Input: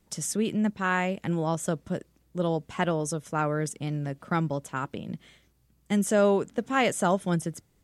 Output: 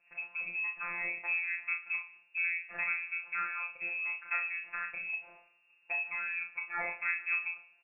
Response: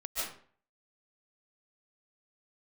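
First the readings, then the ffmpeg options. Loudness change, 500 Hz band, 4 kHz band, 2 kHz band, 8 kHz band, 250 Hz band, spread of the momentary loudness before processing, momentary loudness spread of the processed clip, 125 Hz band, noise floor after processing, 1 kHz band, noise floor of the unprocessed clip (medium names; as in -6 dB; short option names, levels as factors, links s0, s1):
-6.0 dB, -26.5 dB, under -25 dB, +3.0 dB, under -40 dB, under -35 dB, 11 LU, 5 LU, under -35 dB, -68 dBFS, -12.5 dB, -67 dBFS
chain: -filter_complex "[0:a]aecho=1:1:29|51:0.398|0.282,acompressor=threshold=0.02:ratio=3,crystalizer=i=4.5:c=0,asplit=2[s0][s1];[1:a]atrim=start_sample=2205,asetrate=66150,aresample=44100,adelay=27[s2];[s1][s2]afir=irnorm=-1:irlink=0,volume=0.126[s3];[s0][s3]amix=inputs=2:normalize=0,afftfilt=real='hypot(re,im)*cos(PI*b)':imag='0':win_size=1024:overlap=0.75,afreqshift=340,asplit=2[s4][s5];[s5]adelay=35,volume=0.266[s6];[s4][s6]amix=inputs=2:normalize=0,lowpass=f=2600:t=q:w=0.5098,lowpass=f=2600:t=q:w=0.6013,lowpass=f=2600:t=q:w=0.9,lowpass=f=2600:t=q:w=2.563,afreqshift=-3100,bandreject=f=46.8:t=h:w=4,bandreject=f=93.6:t=h:w=4,bandreject=f=140.4:t=h:w=4,bandreject=f=187.2:t=h:w=4,bandreject=f=234:t=h:w=4,bandreject=f=280.8:t=h:w=4,bandreject=f=327.6:t=h:w=4,bandreject=f=374.4:t=h:w=4,bandreject=f=421.2:t=h:w=4,bandreject=f=468:t=h:w=4,bandreject=f=514.8:t=h:w=4,bandreject=f=561.6:t=h:w=4,bandreject=f=608.4:t=h:w=4,bandreject=f=655.2:t=h:w=4,bandreject=f=702:t=h:w=4,bandreject=f=748.8:t=h:w=4,bandreject=f=795.6:t=h:w=4,bandreject=f=842.4:t=h:w=4,bandreject=f=889.2:t=h:w=4,bandreject=f=936:t=h:w=4,bandreject=f=982.8:t=h:w=4,bandreject=f=1029.6:t=h:w=4,bandreject=f=1076.4:t=h:w=4,bandreject=f=1123.2:t=h:w=4,bandreject=f=1170:t=h:w=4,bandreject=f=1216.8:t=h:w=4,bandreject=f=1263.6:t=h:w=4,bandreject=f=1310.4:t=h:w=4,bandreject=f=1357.2:t=h:w=4"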